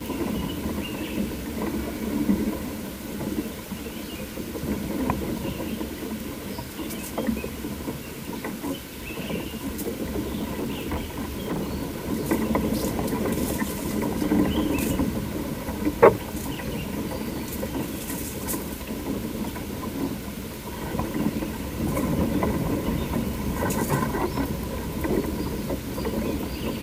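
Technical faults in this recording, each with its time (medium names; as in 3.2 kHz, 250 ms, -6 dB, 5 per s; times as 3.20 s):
crackle 25 per s -32 dBFS
10.38–11.83 s: clipped -23.5 dBFS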